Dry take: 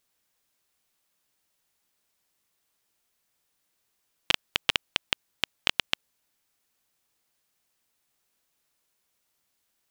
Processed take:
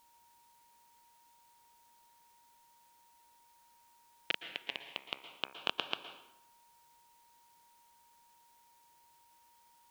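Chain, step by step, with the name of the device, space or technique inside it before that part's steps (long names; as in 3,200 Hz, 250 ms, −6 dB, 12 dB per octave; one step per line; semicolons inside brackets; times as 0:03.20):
shortwave radio (band-pass filter 280–2,500 Hz; amplitude tremolo 0.53 Hz, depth 60%; auto-filter notch sine 0.22 Hz 710–2,000 Hz; steady tone 940 Hz −64 dBFS; white noise bed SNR 21 dB)
0:04.62–0:05.53: hum removal 66.99 Hz, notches 38
dense smooth reverb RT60 0.86 s, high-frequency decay 0.75×, pre-delay 105 ms, DRR 9 dB
level −1.5 dB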